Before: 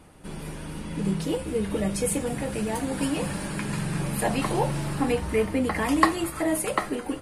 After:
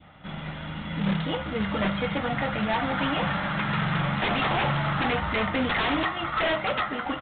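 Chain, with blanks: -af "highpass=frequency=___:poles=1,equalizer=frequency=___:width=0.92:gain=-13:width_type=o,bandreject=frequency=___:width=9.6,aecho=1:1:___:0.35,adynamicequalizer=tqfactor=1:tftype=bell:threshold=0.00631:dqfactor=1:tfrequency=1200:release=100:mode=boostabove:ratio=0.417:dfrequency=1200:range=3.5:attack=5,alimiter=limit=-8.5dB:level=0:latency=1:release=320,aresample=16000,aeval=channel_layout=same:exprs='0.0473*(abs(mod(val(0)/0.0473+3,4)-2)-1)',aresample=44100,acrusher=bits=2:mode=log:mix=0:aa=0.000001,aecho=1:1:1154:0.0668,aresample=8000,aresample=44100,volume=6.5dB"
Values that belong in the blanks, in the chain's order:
200, 420, 2600, 1.5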